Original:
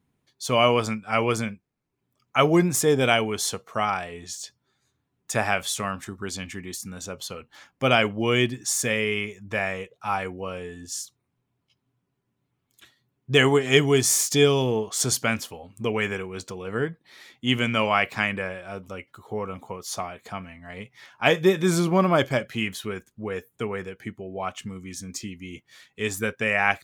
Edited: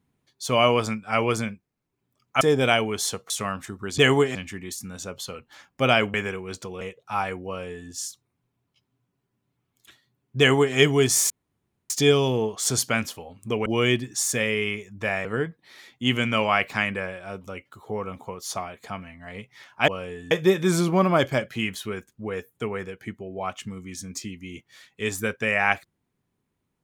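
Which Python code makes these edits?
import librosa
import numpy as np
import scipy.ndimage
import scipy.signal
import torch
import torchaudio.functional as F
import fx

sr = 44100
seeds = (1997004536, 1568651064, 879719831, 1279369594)

y = fx.edit(x, sr, fx.cut(start_s=2.41, length_s=0.4),
    fx.cut(start_s=3.7, length_s=1.99),
    fx.swap(start_s=8.16, length_s=1.59, other_s=16.0, other_length_s=0.67),
    fx.duplicate(start_s=10.41, length_s=0.43, to_s=21.3),
    fx.duplicate(start_s=13.33, length_s=0.37, to_s=6.37),
    fx.insert_room_tone(at_s=14.24, length_s=0.6), tone=tone)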